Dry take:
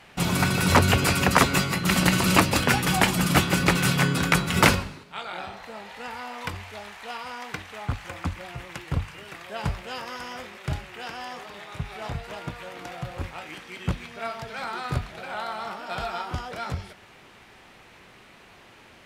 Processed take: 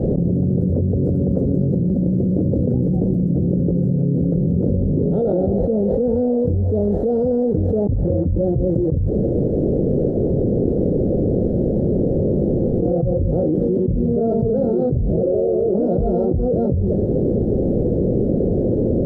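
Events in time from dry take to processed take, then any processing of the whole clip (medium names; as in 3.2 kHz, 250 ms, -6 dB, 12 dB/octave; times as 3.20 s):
7.84–8.41 s: distance through air 190 m
9.09–12.82 s: room tone
15.23–15.74 s: FFT filter 110 Hz 0 dB, 230 Hz -10 dB, 360 Hz +8 dB, 670 Hz -1 dB, 1.1 kHz -28 dB, 1.6 kHz -25 dB, 2.8 kHz +3 dB, 4.5 kHz -11 dB, 8.3 kHz +9 dB, 12 kHz -12 dB
whole clip: elliptic low-pass 520 Hz, stop band 50 dB; level flattener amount 100%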